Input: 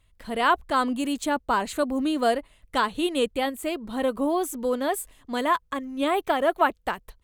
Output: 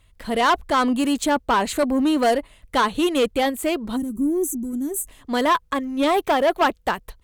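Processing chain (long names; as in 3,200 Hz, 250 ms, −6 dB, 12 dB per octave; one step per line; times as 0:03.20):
soft clipping −20 dBFS, distortion −12 dB
gain on a spectral selection 0:03.96–0:05.08, 400–5,800 Hz −26 dB
harmonic generator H 2 −28 dB, 4 −28 dB, 6 −42 dB, 7 −43 dB, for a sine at −20 dBFS
level +7.5 dB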